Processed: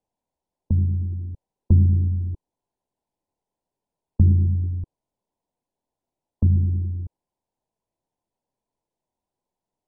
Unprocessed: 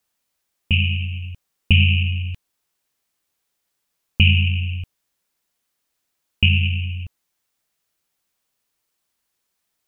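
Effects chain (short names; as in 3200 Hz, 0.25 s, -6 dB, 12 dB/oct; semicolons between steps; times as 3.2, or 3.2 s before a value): MP2 8 kbps 22050 Hz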